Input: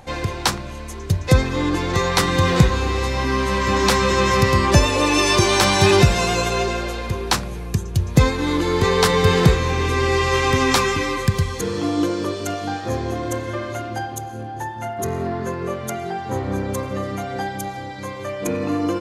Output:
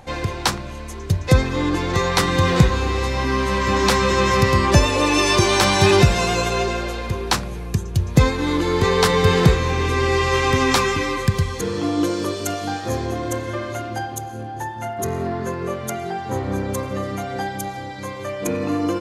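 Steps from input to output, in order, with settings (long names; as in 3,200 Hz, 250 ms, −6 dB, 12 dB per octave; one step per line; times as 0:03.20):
high-shelf EQ 5,900 Hz −2 dB, from 0:12.04 +7.5 dB, from 0:13.06 +2 dB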